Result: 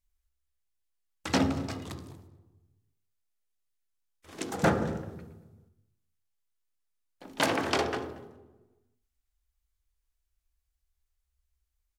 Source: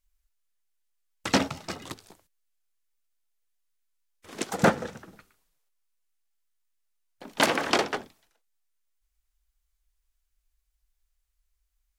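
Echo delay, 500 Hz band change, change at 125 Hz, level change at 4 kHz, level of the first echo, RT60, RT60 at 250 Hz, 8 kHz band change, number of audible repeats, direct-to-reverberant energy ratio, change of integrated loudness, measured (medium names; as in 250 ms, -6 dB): 233 ms, -2.5 dB, +1.5 dB, -5.0 dB, -22.5 dB, 1.1 s, 1.4 s, -5.0 dB, 1, 6.0 dB, -3.5 dB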